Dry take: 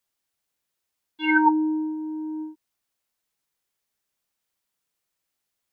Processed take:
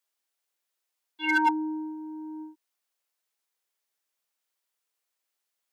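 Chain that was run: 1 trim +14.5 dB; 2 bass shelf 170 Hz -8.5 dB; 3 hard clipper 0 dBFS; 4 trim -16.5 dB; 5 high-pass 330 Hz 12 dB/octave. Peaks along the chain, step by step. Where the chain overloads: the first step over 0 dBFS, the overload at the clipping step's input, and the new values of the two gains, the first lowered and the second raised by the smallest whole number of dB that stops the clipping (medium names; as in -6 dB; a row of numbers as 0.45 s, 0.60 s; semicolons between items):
+7.0 dBFS, +6.5 dBFS, 0.0 dBFS, -16.5 dBFS, -13.5 dBFS; step 1, 6.5 dB; step 1 +7.5 dB, step 4 -9.5 dB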